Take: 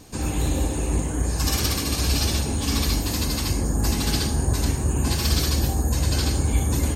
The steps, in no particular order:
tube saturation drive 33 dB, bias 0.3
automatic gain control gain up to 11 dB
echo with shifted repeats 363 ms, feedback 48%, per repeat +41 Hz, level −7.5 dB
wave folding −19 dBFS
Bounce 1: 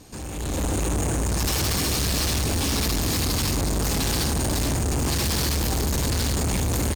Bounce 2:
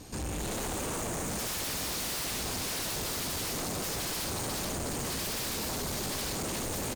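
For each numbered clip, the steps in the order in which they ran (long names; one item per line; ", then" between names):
wave folding, then echo with shifted repeats, then tube saturation, then automatic gain control
echo with shifted repeats, then automatic gain control, then wave folding, then tube saturation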